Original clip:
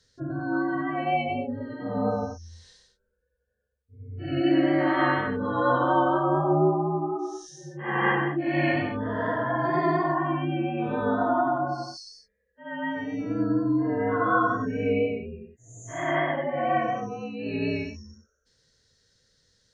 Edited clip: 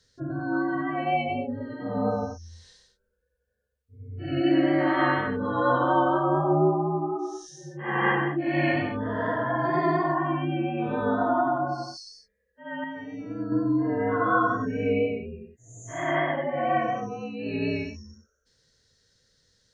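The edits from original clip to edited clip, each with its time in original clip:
0:12.84–0:13.52: clip gain −6 dB

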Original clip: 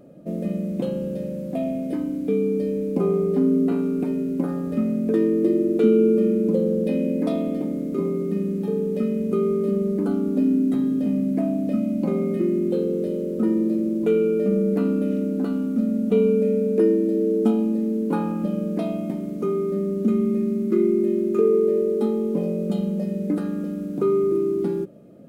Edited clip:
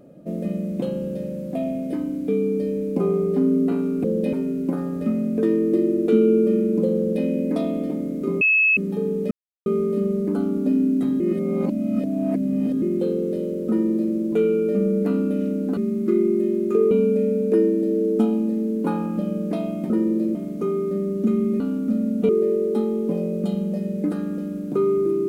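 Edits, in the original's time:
0:06.67–0:06.96: duplicate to 0:04.04
0:08.12–0:08.48: beep over 2,590 Hz −14 dBFS
0:09.02–0:09.37: silence
0:10.91–0:12.53: reverse
0:13.40–0:13.85: duplicate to 0:19.16
0:15.48–0:16.17: swap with 0:20.41–0:21.55

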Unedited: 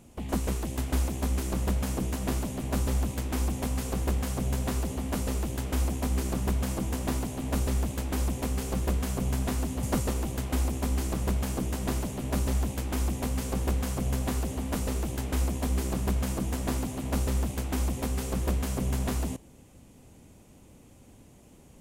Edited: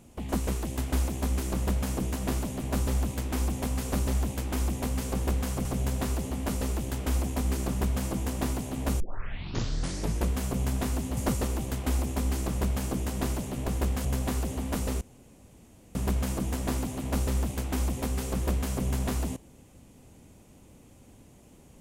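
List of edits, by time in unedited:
0:03.93–0:04.31: swap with 0:12.33–0:14.05
0:07.66: tape start 1.30 s
0:15.01–0:15.95: fill with room tone

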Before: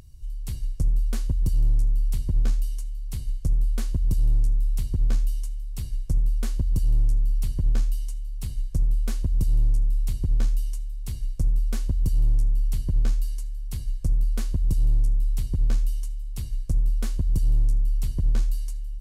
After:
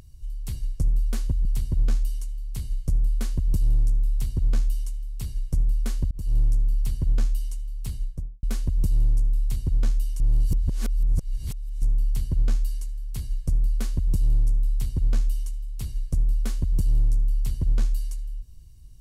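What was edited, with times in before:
0:01.45–0:02.02: remove
0:06.68–0:06.94: fade in
0:08.48–0:09.00: fade out and dull
0:10.77–0:12.39: reverse

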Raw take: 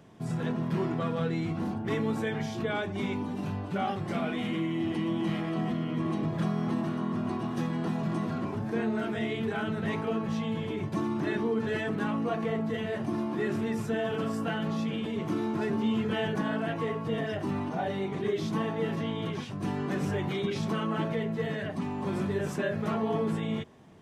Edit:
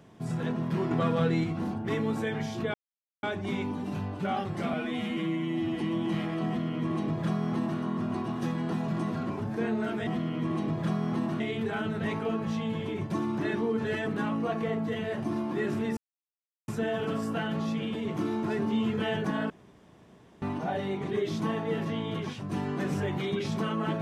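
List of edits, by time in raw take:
0:00.91–0:01.44: clip gain +4 dB
0:02.74: splice in silence 0.49 s
0:04.24–0:04.96: time-stretch 1.5×
0:05.62–0:06.95: duplicate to 0:09.22
0:13.79: splice in silence 0.71 s
0:16.61–0:17.53: fill with room tone

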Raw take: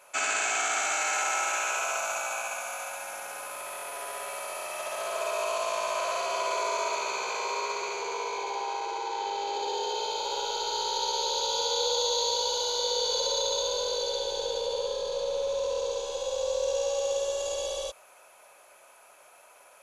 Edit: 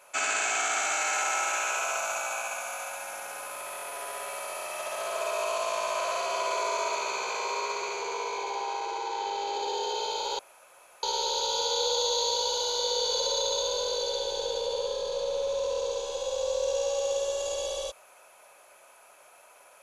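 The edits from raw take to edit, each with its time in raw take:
0:10.39–0:11.03: fill with room tone

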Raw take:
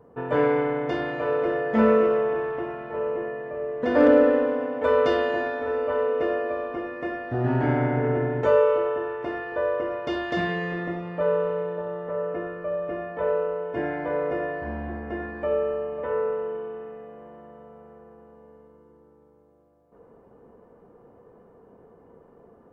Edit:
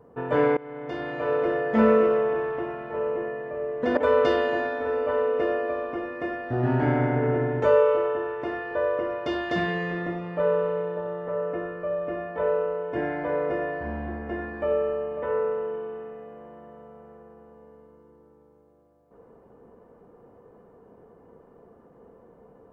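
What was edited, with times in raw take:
0:00.57–0:01.33: fade in, from −22.5 dB
0:03.97–0:04.78: remove

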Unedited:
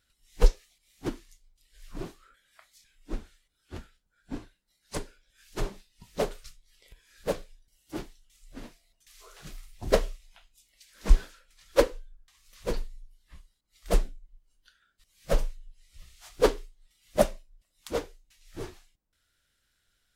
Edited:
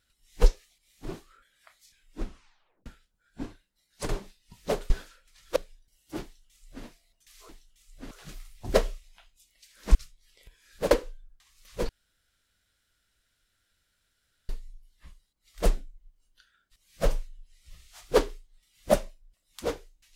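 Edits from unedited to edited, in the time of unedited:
0:01.05–0:01.97: remove
0:03.13: tape stop 0.65 s
0:05.01–0:05.59: remove
0:06.40–0:07.36: swap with 0:11.13–0:11.79
0:08.03–0:08.65: duplicate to 0:09.29
0:12.77: splice in room tone 2.60 s

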